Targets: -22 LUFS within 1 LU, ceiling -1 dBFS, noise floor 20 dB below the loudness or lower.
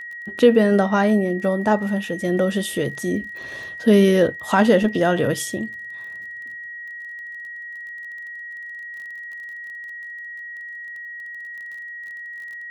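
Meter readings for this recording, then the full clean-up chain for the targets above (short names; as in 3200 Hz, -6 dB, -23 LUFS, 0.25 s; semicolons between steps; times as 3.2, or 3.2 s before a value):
ticks 25/s; steady tone 1900 Hz; tone level -32 dBFS; loudness -19.5 LUFS; peak -3.0 dBFS; loudness target -22.0 LUFS
-> de-click; notch 1900 Hz, Q 30; gain -2.5 dB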